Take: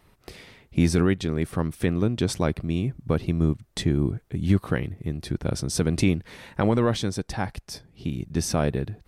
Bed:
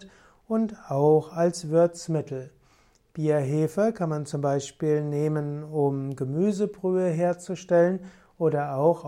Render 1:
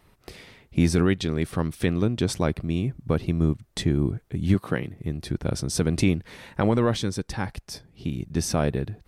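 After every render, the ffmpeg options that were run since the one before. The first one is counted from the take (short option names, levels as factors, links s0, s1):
-filter_complex "[0:a]asettb=1/sr,asplit=3[s0][s1][s2];[s0]atrim=end=1.064[s3];[s1]atrim=start=1.06:end=2.05,asetpts=PTS-STARTPTS,afade=t=in:d=0.004:c=qsin,afade=t=out:st=0.986:d=0.004:c=qsin,equalizer=f=4000:w=0.91:g=4.5[s4];[s2]atrim=start=2.046[s5];[s3][s4]acrossfade=d=0.004:c1=hsin:c2=qsin[s6];[s6][s5]acrossfade=d=0.004:c1=qsin:c2=hsin,asettb=1/sr,asplit=3[s7][s8][s9];[s7]atrim=end=4.544[s10];[s8]atrim=start=4.54:end=4.96,asetpts=PTS-STARTPTS,afade=t=in:d=0.004:c=qsin,afade=t=out:st=0.416:d=0.004:c=qsin,highpass=130[s11];[s9]atrim=start=4.956[s12];[s10][s11]acrossfade=d=0.004:c1=hsin:c2=qsin[s13];[s13][s12]acrossfade=d=0.004:c1=qsin:c2=hsin,asettb=1/sr,asplit=3[s14][s15][s16];[s14]atrim=end=6.994[s17];[s15]atrim=start=6.99:end=7.46,asetpts=PTS-STARTPTS,afade=t=in:d=0.004:c=qsin,afade=t=out:st=0.466:d=0.004:c=qsin,equalizer=f=690:w=6.7:g=-12.5[s18];[s16]atrim=start=7.456[s19];[s17][s18]acrossfade=d=0.004:c1=hsin:c2=qsin[s20];[s20][s19]acrossfade=d=0.004:c1=qsin:c2=hsin"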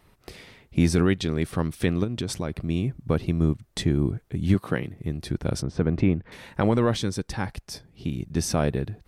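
-filter_complex "[0:a]asplit=3[s0][s1][s2];[s0]afade=t=out:st=2.03:d=0.02[s3];[s1]acompressor=threshold=0.0562:ratio=3:attack=3.2:release=140:knee=1:detection=peak,afade=t=in:st=2.03:d=0.02,afade=t=out:st=2.56:d=0.02[s4];[s2]afade=t=in:st=2.56:d=0.02[s5];[s3][s4][s5]amix=inputs=3:normalize=0,asettb=1/sr,asplit=3[s6][s7][s8];[s6]atrim=end=5.624[s9];[s7]atrim=start=5.62:end=6.32,asetpts=PTS-STARTPTS,afade=t=in:d=0.004:c=qsin,afade=t=out:st=0.696:d=0.004:c=qsin,lowpass=1800[s10];[s8]atrim=start=6.316[s11];[s9][s10]acrossfade=d=0.004:c1=hsin:c2=qsin[s12];[s12][s11]acrossfade=d=0.004:c1=qsin:c2=hsin"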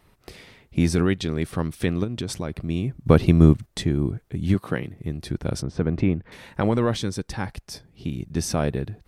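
-filter_complex "[0:a]asplit=3[s0][s1][s2];[s0]atrim=end=3.062[s3];[s1]atrim=start=3.058:end=3.662,asetpts=PTS-STARTPTS,volume=2.66[s4];[s2]atrim=start=3.658[s5];[s3][s4]acrossfade=d=0.004:c1=hsin:c2=hsin[s6];[s6][s5]acrossfade=d=0.004:c1=hsin:c2=hsin"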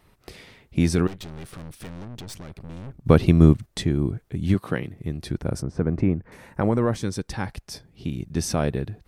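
-filter_complex "[0:a]asettb=1/sr,asplit=3[s0][s1][s2];[s0]atrim=end=1.074[s3];[s1]atrim=start=1.07:end=3.05,asetpts=PTS-STARTPTS,afade=t=in:d=0.004:c=qsin,afade=t=out:st=1.976:d=0.004:c=qsin,aeval=exprs='(tanh(56.2*val(0)+0.7)-tanh(0.7))/56.2':c=same[s4];[s2]atrim=start=3.046[s5];[s3][s4]acrossfade=d=0.004:c1=hsin:c2=qsin[s6];[s6][s5]acrossfade=d=0.004:c1=qsin:c2=hsin,asettb=1/sr,asplit=3[s7][s8][s9];[s7]atrim=end=5.424[s10];[s8]atrim=start=5.42:end=7.03,asetpts=PTS-STARTPTS,afade=t=in:d=0.004:c=qsin,afade=t=out:st=1.606:d=0.004:c=qsin,equalizer=f=3500:w=1.3:g=-12[s11];[s9]atrim=start=7.026[s12];[s10][s11]acrossfade=d=0.004:c1=hsin:c2=qsin[s13];[s13][s12]acrossfade=d=0.004:c1=qsin:c2=hsin"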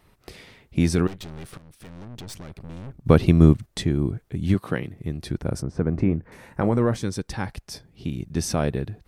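-filter_complex "[0:a]asettb=1/sr,asplit=3[s0][s1][s2];[s0]atrim=end=5.914[s3];[s1]atrim=start=5.91:end=6.99,asetpts=PTS-STARTPTS,afade=t=in:d=0.004:c=qsin,afade=t=out:st=1.076:d=0.004:c=qsin,asplit=2[s4][s5];[s5]adelay=25,volume=0.224[s6];[s4][s6]amix=inputs=2:normalize=0,atrim=end_sample=47628[s7];[s2]atrim=start=6.986[s8];[s3][s7]acrossfade=d=0.004:c1=hsin:c2=qsin[s9];[s9][s8]acrossfade=d=0.004:c1=qsin:c2=hsin,asplit=2[s10][s11];[s10]atrim=end=1.58,asetpts=PTS-STARTPTS,afade=t=out:st=1.576:d=0.004:c=hsin:silence=0.211349[s12];[s11]atrim=start=1.58,asetpts=PTS-STARTPTS,afade=t=in:d=0.67:silence=0.211349[s13];[s12][s13]concat=n=2:v=0:a=1"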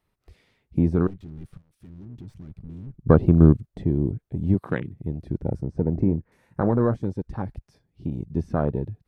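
-filter_complex "[0:a]acrossover=split=2700[s0][s1];[s1]acompressor=threshold=0.00398:ratio=4:attack=1:release=60[s2];[s0][s2]amix=inputs=2:normalize=0,afwtdn=0.0282"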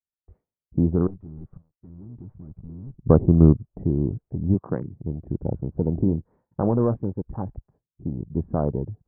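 -af "agate=range=0.0224:threshold=0.00447:ratio=3:detection=peak,lowpass=f=1100:w=0.5412,lowpass=f=1100:w=1.3066"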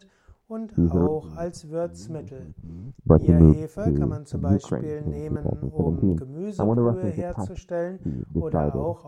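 -filter_complex "[1:a]volume=0.398[s0];[0:a][s0]amix=inputs=2:normalize=0"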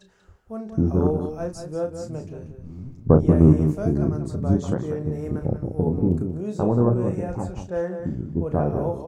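-filter_complex "[0:a]asplit=2[s0][s1];[s1]adelay=33,volume=0.422[s2];[s0][s2]amix=inputs=2:normalize=0,asplit=2[s3][s4];[s4]adelay=186.6,volume=0.398,highshelf=f=4000:g=-4.2[s5];[s3][s5]amix=inputs=2:normalize=0"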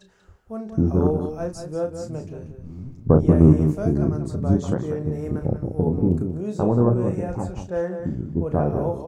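-af "volume=1.12,alimiter=limit=0.708:level=0:latency=1"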